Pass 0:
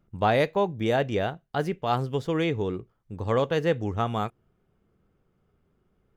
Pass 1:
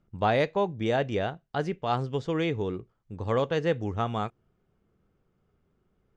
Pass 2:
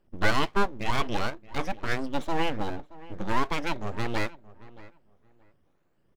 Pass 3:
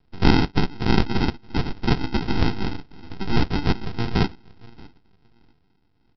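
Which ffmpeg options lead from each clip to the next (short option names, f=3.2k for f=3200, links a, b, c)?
-af "lowpass=f=7.7k:w=0.5412,lowpass=f=7.7k:w=1.3066,volume=-2dB"
-filter_complex "[0:a]afftfilt=real='re*pow(10,15/40*sin(2*PI*(1.3*log(max(b,1)*sr/1024/100)/log(2)-(2)*(pts-256)/sr)))':imag='im*pow(10,15/40*sin(2*PI*(1.3*log(max(b,1)*sr/1024/100)/log(2)-(2)*(pts-256)/sr)))':win_size=1024:overlap=0.75,aeval=exprs='abs(val(0))':c=same,asplit=2[a][b];[b]adelay=626,lowpass=f=2.1k:p=1,volume=-19dB,asplit=2[c][d];[d]adelay=626,lowpass=f=2.1k:p=1,volume=0.21[e];[a][c][e]amix=inputs=3:normalize=0"
-af "aexciter=amount=10.9:drive=8.7:freq=3.5k,aresample=11025,acrusher=samples=19:mix=1:aa=0.000001,aresample=44100,crystalizer=i=1:c=0,volume=2.5dB"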